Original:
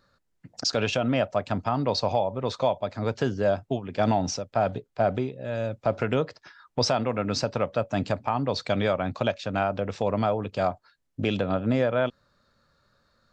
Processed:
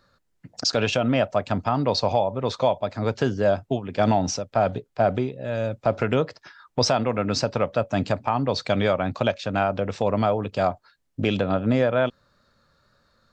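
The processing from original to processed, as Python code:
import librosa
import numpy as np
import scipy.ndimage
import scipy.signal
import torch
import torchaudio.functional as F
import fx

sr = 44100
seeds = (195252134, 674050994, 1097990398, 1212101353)

y = fx.wow_flutter(x, sr, seeds[0], rate_hz=2.1, depth_cents=18.0)
y = y * librosa.db_to_amplitude(3.0)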